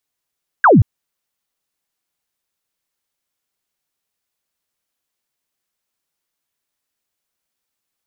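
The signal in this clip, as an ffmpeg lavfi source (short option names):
-f lavfi -i "aevalsrc='0.531*clip(t/0.002,0,1)*clip((0.18-t)/0.002,0,1)*sin(2*PI*1700*0.18/log(84/1700)*(exp(log(84/1700)*t/0.18)-1))':d=0.18:s=44100"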